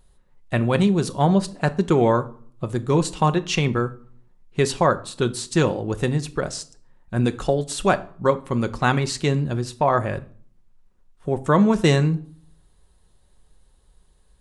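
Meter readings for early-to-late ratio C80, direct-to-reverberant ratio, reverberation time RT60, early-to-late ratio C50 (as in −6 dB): 22.5 dB, 9.0 dB, 0.50 s, 18.5 dB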